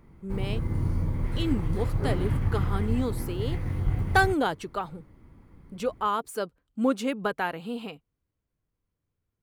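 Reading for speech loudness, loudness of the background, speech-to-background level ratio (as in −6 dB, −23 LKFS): −30.5 LKFS, −30.0 LKFS, −0.5 dB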